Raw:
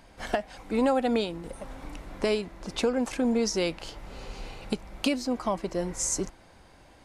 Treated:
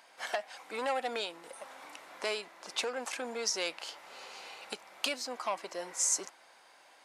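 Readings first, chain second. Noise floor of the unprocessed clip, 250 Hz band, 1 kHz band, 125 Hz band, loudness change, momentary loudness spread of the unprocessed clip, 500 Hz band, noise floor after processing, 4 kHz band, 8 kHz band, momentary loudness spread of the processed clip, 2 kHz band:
-55 dBFS, -20.0 dB, -4.5 dB, under -25 dB, -6.0 dB, 17 LU, -9.5 dB, -60 dBFS, -1.0 dB, 0.0 dB, 16 LU, -1.0 dB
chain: HPF 770 Hz 12 dB/oct; core saturation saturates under 2800 Hz

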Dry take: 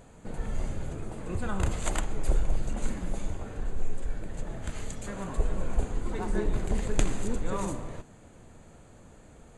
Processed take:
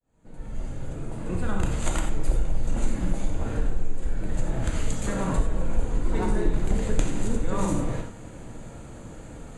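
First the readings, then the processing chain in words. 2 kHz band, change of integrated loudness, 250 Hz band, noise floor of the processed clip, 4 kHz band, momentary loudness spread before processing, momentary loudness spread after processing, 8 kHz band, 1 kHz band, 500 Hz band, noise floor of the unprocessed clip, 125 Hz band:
+3.0 dB, +4.5 dB, +6.0 dB, -42 dBFS, +2.5 dB, 22 LU, 15 LU, +3.0 dB, +4.0 dB, +4.0 dB, -53 dBFS, +5.0 dB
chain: opening faded in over 2.69 s; low shelf 460 Hz +3.5 dB; compressor 3:1, threshold -29 dBFS, peak gain reduction 11.5 dB; non-linear reverb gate 0.12 s flat, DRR 2.5 dB; gain +7 dB

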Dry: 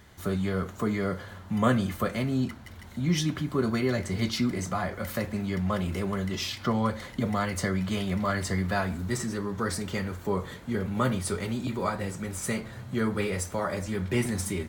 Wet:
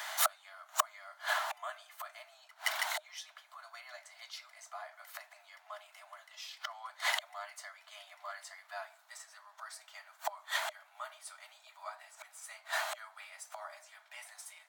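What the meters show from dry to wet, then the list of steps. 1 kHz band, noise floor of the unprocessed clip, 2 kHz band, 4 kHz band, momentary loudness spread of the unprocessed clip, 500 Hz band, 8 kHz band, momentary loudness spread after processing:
-6.5 dB, -46 dBFS, -4.0 dB, -4.0 dB, 5 LU, -18.0 dB, -5.0 dB, 18 LU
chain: flipped gate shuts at -27 dBFS, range -31 dB; Chebyshev high-pass 610 Hz, order 10; gain +17.5 dB

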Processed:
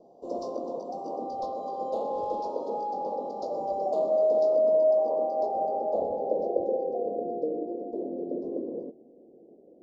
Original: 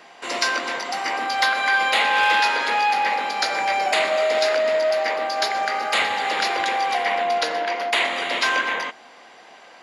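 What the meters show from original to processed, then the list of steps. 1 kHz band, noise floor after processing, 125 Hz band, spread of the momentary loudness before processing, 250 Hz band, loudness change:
-11.5 dB, -55 dBFS, n/a, 7 LU, +2.5 dB, -8.0 dB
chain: low-pass sweep 1400 Hz -> 360 Hz, 4.41–7.59; dynamic EQ 1200 Hz, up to +7 dB, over -33 dBFS, Q 1.9; elliptic band-stop 560–5600 Hz, stop band 70 dB

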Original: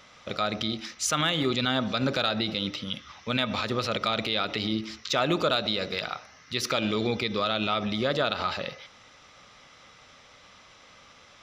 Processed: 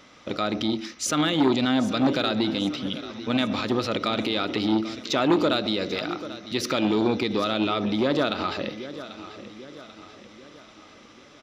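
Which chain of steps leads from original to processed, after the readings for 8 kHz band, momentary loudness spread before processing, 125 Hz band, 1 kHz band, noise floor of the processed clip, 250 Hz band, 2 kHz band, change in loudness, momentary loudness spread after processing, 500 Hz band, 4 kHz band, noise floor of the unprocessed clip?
0.0 dB, 9 LU, +1.0 dB, +1.5 dB, -50 dBFS, +7.5 dB, -0.5 dB, +2.5 dB, 15 LU, +3.5 dB, -0.5 dB, -54 dBFS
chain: bell 300 Hz +12.5 dB 0.85 oct; feedback echo 0.79 s, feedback 49%, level -15 dB; core saturation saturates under 650 Hz

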